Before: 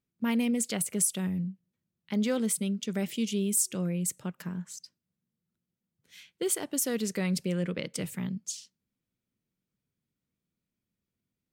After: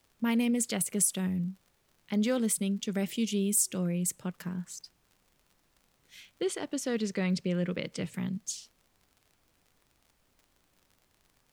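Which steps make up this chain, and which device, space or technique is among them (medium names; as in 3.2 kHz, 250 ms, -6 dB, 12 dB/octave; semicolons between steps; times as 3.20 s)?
6.28–8.14 s: low-pass 5.1 kHz 12 dB/octave; vinyl LP (crackle 57 per s -49 dBFS; pink noise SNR 38 dB)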